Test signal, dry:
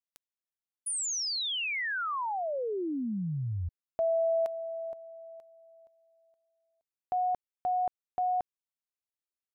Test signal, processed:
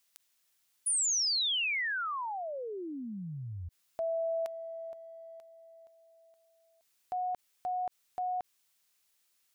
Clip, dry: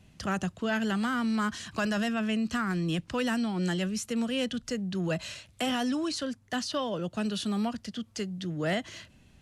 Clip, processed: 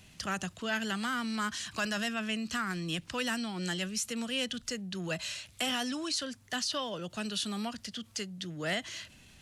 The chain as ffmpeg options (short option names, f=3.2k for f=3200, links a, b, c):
-af "acompressor=mode=upward:threshold=-34dB:ratio=1.5:attack=0.21:release=23:knee=2.83:detection=peak,tiltshelf=f=1.3k:g=-5.5,volume=-2dB"